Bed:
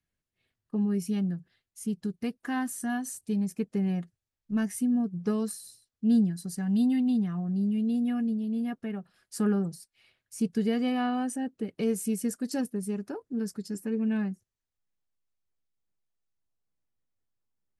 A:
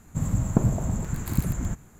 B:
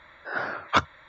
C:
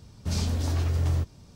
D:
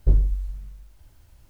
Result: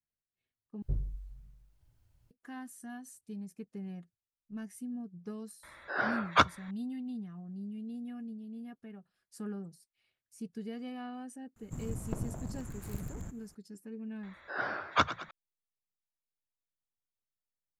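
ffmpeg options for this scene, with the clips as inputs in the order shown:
-filter_complex "[2:a]asplit=2[a][b];[0:a]volume=-14dB[c];[4:a]equalizer=f=130:w=1.5:g=9.5[d];[1:a]aeval=exprs='clip(val(0),-1,0.0355)':c=same[e];[b]asplit=6[f][g][h][i][j][k];[g]adelay=108,afreqshift=36,volume=-13.5dB[l];[h]adelay=216,afreqshift=72,volume=-19.3dB[m];[i]adelay=324,afreqshift=108,volume=-25.2dB[n];[j]adelay=432,afreqshift=144,volume=-31dB[o];[k]adelay=540,afreqshift=180,volume=-36.9dB[p];[f][l][m][n][o][p]amix=inputs=6:normalize=0[q];[c]asplit=2[r][s];[r]atrim=end=0.824[t];[d]atrim=end=1.49,asetpts=PTS-STARTPTS,volume=-17.5dB[u];[s]atrim=start=2.306[v];[a]atrim=end=1.08,asetpts=PTS-STARTPTS,volume=-2dB,afade=t=in:d=0.004:c=hsin,afade=t=out:st=1.076:d=0.004:c=hsin,adelay=5630[w];[e]atrim=end=1.99,asetpts=PTS-STARTPTS,volume=-12dB,afade=t=in:d=0.004:c=hsin,afade=t=out:st=1.986:d=0.004:c=hsin,adelay=11560[x];[q]atrim=end=1.08,asetpts=PTS-STARTPTS,volume=-5dB,afade=t=in:d=0.004:c=hsin,afade=t=out:st=1.076:d=0.004:c=hsin,adelay=14230[y];[t][u]acrossfade=d=0.004:c1=hsin:c2=hsin[z];[z][v]acrossfade=d=0.004:c1=hsin:c2=hsin[aa];[aa][w][x][y]amix=inputs=4:normalize=0"

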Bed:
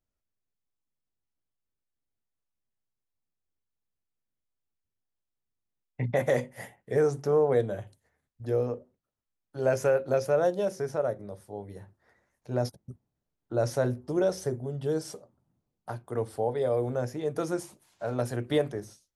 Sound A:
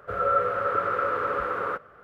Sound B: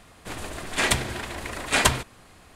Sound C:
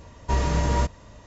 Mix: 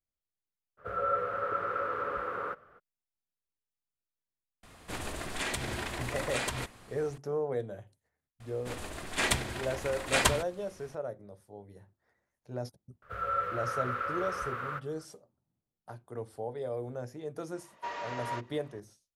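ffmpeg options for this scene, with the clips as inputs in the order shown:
-filter_complex "[1:a]asplit=2[a][b];[2:a]asplit=2[c][d];[0:a]volume=-9dB[e];[c]acompressor=threshold=-27dB:ratio=6:attack=3.2:release=140:knee=1:detection=peak[f];[b]equalizer=f=410:w=0.37:g=-13.5[g];[3:a]highpass=770,lowpass=3.1k[h];[a]atrim=end=2.03,asetpts=PTS-STARTPTS,volume=-7dB,afade=t=in:d=0.02,afade=t=out:st=2.01:d=0.02,adelay=770[i];[f]atrim=end=2.55,asetpts=PTS-STARTPTS,volume=-3dB,afade=t=in:d=0.004:c=hsin,afade=t=out:st=2.546:d=0.004:c=hsin,adelay=4630[j];[d]atrim=end=2.55,asetpts=PTS-STARTPTS,volume=-6dB,afade=t=in:d=0.004:c=hsin,afade=t=out:st=2.546:d=0.004:c=hsin,adelay=8400[k];[g]atrim=end=2.03,asetpts=PTS-STARTPTS,volume=-1dB,afade=t=in:d=0.004:c=hsin,afade=t=out:st=2.026:d=0.004:c=hsin,adelay=13020[l];[h]atrim=end=1.26,asetpts=PTS-STARTPTS,volume=-6dB,afade=t=in:d=0.004:c=hsin,afade=t=out:st=1.256:d=0.004:c=hsin,adelay=17540[m];[e][i][j][k][l][m]amix=inputs=6:normalize=0"

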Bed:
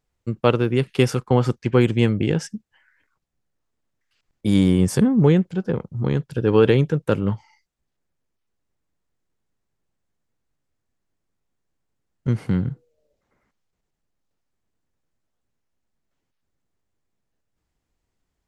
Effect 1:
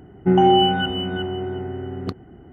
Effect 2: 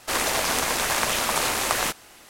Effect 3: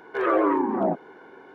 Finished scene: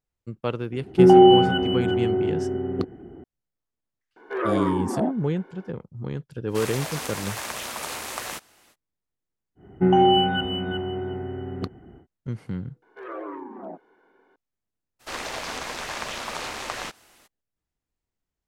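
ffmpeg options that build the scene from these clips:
-filter_complex "[1:a]asplit=2[a][b];[3:a]asplit=2[c][d];[2:a]asplit=2[e][f];[0:a]volume=-10dB[g];[a]equalizer=f=360:t=o:w=1.5:g=8.5[h];[c]lowshelf=f=180:t=q:w=1.5:g=-8[i];[e]highpass=50[j];[d]equalizer=f=130:t=o:w=0.55:g=-10[k];[f]acrossover=split=6700[l][m];[m]acompressor=threshold=-45dB:ratio=4:attack=1:release=60[n];[l][n]amix=inputs=2:normalize=0[o];[h]atrim=end=2.52,asetpts=PTS-STARTPTS,volume=-3.5dB,afade=t=in:d=0.004:c=hsin,afade=t=out:st=2.516:d=0.004:c=hsin,adelay=720[p];[i]atrim=end=1.54,asetpts=PTS-STARTPTS,volume=-4dB,afade=t=in:d=0.004:c=hsin,afade=t=out:st=1.536:d=0.004:c=hsin,adelay=4160[q];[j]atrim=end=2.29,asetpts=PTS-STARTPTS,volume=-9dB,afade=t=in:d=0.05,afade=t=out:st=2.24:d=0.05,adelay=6470[r];[b]atrim=end=2.52,asetpts=PTS-STARTPTS,volume=-2.5dB,afade=t=in:d=0.1,afade=t=out:st=2.42:d=0.1,adelay=9550[s];[k]atrim=end=1.54,asetpts=PTS-STARTPTS,volume=-14dB,afade=t=in:d=0.004:c=hsin,afade=t=out:st=1.536:d=0.004:c=hsin,adelay=12820[t];[o]atrim=end=2.29,asetpts=PTS-STARTPTS,volume=-7.5dB,afade=t=in:d=0.02,afade=t=out:st=2.27:d=0.02,adelay=14990[u];[g][p][q][r][s][t][u]amix=inputs=7:normalize=0"

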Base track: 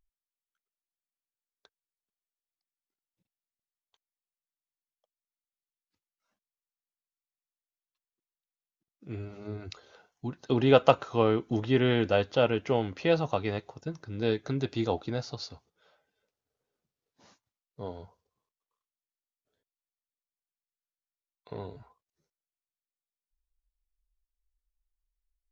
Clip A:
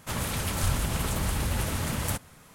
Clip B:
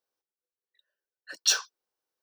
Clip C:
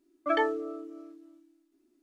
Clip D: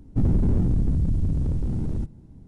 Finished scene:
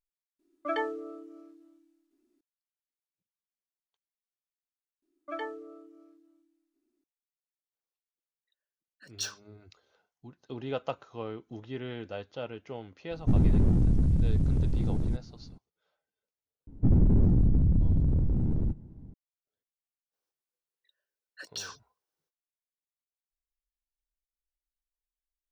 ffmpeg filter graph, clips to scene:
-filter_complex "[3:a]asplit=2[a][b];[2:a]asplit=2[c][d];[4:a]asplit=2[e][f];[0:a]volume=-13.5dB[g];[f]lowpass=f=1k:p=1[h];[d]acompressor=threshold=-32dB:ratio=6:attack=3.2:release=140:knee=1:detection=peak[i];[g]asplit=3[j][k][l];[j]atrim=end=0.394[m];[a]atrim=end=2.02,asetpts=PTS-STARTPTS,volume=-4.5dB[n];[k]atrim=start=2.406:end=5.024[o];[b]atrim=end=2.02,asetpts=PTS-STARTPTS,volume=-10.5dB[p];[l]atrim=start=7.036[q];[c]atrim=end=2.22,asetpts=PTS-STARTPTS,volume=-12dB,afade=t=in:d=0.004:c=hsin,afade=t=out:st=2.216:d=0.004:c=hsin,adelay=7730[r];[e]atrim=end=2.47,asetpts=PTS-STARTPTS,volume=-2dB,afade=t=in:d=0.004:c=hsin,afade=t=out:st=2.466:d=0.004:c=hsin,adelay=13110[s];[h]atrim=end=2.47,asetpts=PTS-STARTPTS,volume=-1dB,afade=t=in:d=0.004:c=hsin,afade=t=out:st=2.466:d=0.004:c=hsin,adelay=16670[t];[i]atrim=end=2.22,asetpts=PTS-STARTPTS,volume=-2.5dB,afade=t=in:d=0.05,afade=t=out:st=2.17:d=0.05,adelay=20100[u];[m][n]acrossfade=d=0.004:c1=hsin:c2=hsin[v];[v][o]acrossfade=d=0.004:c1=hsin:c2=hsin[w];[w][p]acrossfade=d=0.004:c1=hsin:c2=hsin[x];[x][q]acrossfade=d=0.004:c1=hsin:c2=hsin[y];[y][r][s][t][u]amix=inputs=5:normalize=0"

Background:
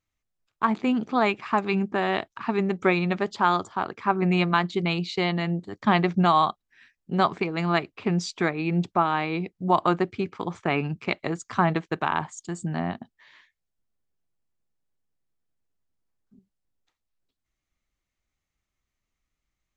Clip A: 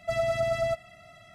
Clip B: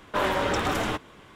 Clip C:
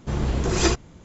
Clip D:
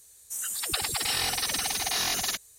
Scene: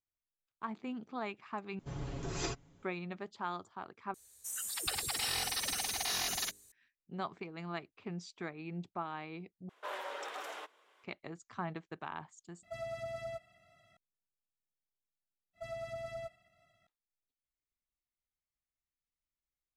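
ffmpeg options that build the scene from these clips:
-filter_complex "[1:a]asplit=2[a][b];[0:a]volume=-17.5dB[c];[3:a]aecho=1:1:7.2:0.68[d];[4:a]bandreject=f=50.51:t=h:w=4,bandreject=f=101.02:t=h:w=4,bandreject=f=151.53:t=h:w=4,bandreject=f=202.04:t=h:w=4,bandreject=f=252.55:t=h:w=4,bandreject=f=303.06:t=h:w=4,bandreject=f=353.57:t=h:w=4,bandreject=f=404.08:t=h:w=4,bandreject=f=454.59:t=h:w=4,bandreject=f=505.1:t=h:w=4[e];[2:a]highpass=f=460:w=0.5412,highpass=f=460:w=1.3066[f];[a]highpass=45[g];[b]agate=range=-33dB:threshold=-49dB:ratio=3:release=100:detection=peak[h];[c]asplit=6[i][j][k][l][m][n];[i]atrim=end=1.794[o];[d]atrim=end=1.04,asetpts=PTS-STARTPTS,volume=-17dB[p];[j]atrim=start=2.826:end=4.144[q];[e]atrim=end=2.58,asetpts=PTS-STARTPTS,volume=-7dB[r];[k]atrim=start=6.716:end=9.694[s];[f]atrim=end=1.35,asetpts=PTS-STARTPTS,volume=-15.5dB[t];[l]atrim=start=11.036:end=12.634[u];[g]atrim=end=1.34,asetpts=PTS-STARTPTS,volume=-14.5dB[v];[m]atrim=start=13.966:end=15.534[w];[h]atrim=end=1.34,asetpts=PTS-STARTPTS,volume=-15.5dB[x];[n]atrim=start=16.866[y];[o][p]acrossfade=d=0.004:c1=hsin:c2=hsin[z];[z][q]acrossfade=d=0.004:c1=hsin:c2=hsin[aa];[aa][r]acrossfade=d=0.004:c1=hsin:c2=hsin[ab];[ab][s]acrossfade=d=0.004:c1=hsin:c2=hsin[ac];[ac][t]acrossfade=d=0.004:c1=hsin:c2=hsin[ad];[ad][u]acrossfade=d=0.004:c1=hsin:c2=hsin[ae];[ae][v]acrossfade=d=0.004:c1=hsin:c2=hsin[af];[af][w]acrossfade=d=0.004:c1=hsin:c2=hsin[ag];[ag][x]acrossfade=d=0.004:c1=hsin:c2=hsin[ah];[ah][y]acrossfade=d=0.004:c1=hsin:c2=hsin"

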